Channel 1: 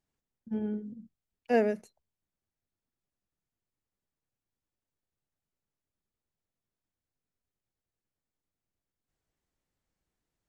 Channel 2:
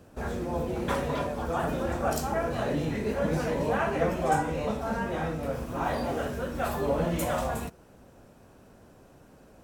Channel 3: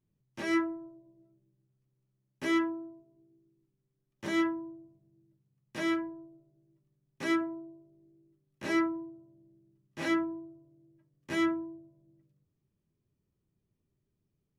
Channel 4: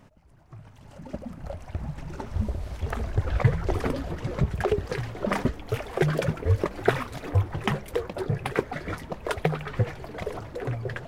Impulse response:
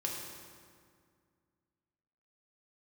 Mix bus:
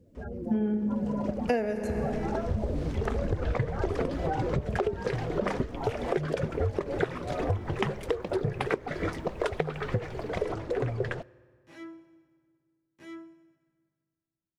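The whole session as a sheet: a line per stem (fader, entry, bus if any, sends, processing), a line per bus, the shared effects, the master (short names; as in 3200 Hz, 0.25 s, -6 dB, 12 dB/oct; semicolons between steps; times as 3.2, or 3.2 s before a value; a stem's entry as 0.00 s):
+2.0 dB, 0.00 s, send -7.5 dB, AGC gain up to 14.5 dB
-4.0 dB, 0.00 s, no send, loudest bins only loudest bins 16
-19.0 dB, 1.70 s, send -9.5 dB, dry
+0.5 dB, 0.15 s, send -23 dB, LPF 8300 Hz 12 dB/oct; bell 420 Hz +6 dB 0.85 oct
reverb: on, RT60 2.1 s, pre-delay 3 ms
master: compressor 16:1, threshold -24 dBFS, peak gain reduction 21 dB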